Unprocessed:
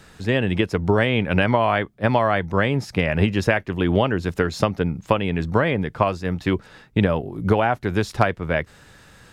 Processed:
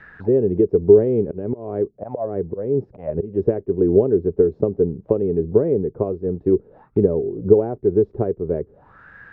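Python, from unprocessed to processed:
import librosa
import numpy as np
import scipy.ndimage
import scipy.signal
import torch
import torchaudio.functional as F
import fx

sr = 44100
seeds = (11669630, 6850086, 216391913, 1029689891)

y = fx.auto_swell(x, sr, attack_ms=249.0, at=(1.2, 3.44))
y = fx.envelope_lowpass(y, sr, base_hz=410.0, top_hz=1900.0, q=6.5, full_db=-23.5, direction='down')
y = y * librosa.db_to_amplitude(-4.0)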